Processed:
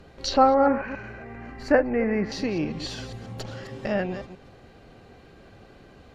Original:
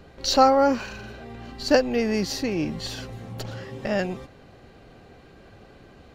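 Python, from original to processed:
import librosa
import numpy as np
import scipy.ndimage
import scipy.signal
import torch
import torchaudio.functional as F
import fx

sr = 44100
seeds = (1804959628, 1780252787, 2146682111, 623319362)

y = fx.reverse_delay(x, sr, ms=136, wet_db=-11.5)
y = fx.high_shelf_res(y, sr, hz=2700.0, db=-8.5, q=3.0, at=(0.66, 2.32))
y = fx.env_lowpass_down(y, sr, base_hz=1800.0, full_db=-18.5)
y = F.gain(torch.from_numpy(y), -1.0).numpy()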